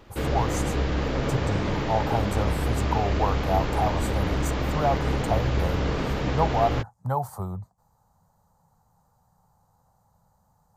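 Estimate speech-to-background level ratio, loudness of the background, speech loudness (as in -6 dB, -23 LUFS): -2.0 dB, -27.5 LUFS, -29.5 LUFS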